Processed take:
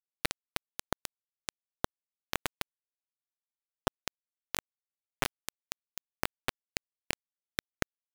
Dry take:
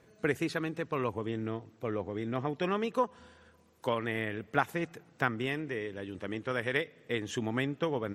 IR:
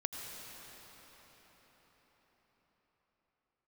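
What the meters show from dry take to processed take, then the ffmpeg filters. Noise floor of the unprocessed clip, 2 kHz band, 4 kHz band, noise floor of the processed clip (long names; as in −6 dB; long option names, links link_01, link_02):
−63 dBFS, −5.0 dB, +2.5 dB, below −85 dBFS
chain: -af "lowshelf=frequency=260:gain=-2.5,acompressor=threshold=-37dB:ratio=20,acrusher=bits=7:mode=log:mix=0:aa=0.000001,tremolo=f=39:d=0.571,acrusher=bits=4:mix=0:aa=0.000001,volume=12.5dB"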